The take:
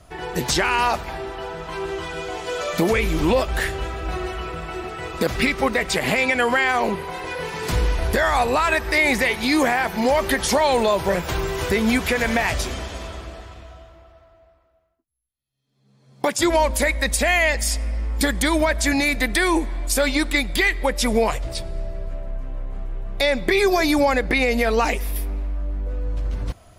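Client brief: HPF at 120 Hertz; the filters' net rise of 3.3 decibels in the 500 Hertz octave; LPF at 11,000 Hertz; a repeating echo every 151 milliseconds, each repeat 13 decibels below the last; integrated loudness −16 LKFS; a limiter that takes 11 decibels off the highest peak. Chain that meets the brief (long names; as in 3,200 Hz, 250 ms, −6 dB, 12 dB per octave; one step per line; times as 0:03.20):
high-pass filter 120 Hz
low-pass filter 11,000 Hz
parametric band 500 Hz +4 dB
brickwall limiter −15.5 dBFS
repeating echo 151 ms, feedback 22%, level −13 dB
level +9 dB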